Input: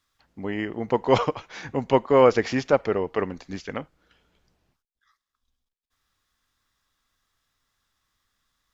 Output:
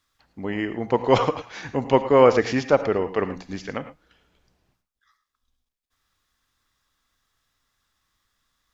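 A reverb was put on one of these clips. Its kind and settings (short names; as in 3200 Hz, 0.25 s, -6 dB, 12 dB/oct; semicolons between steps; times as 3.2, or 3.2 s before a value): non-linear reverb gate 0.13 s rising, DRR 11 dB; gain +1.5 dB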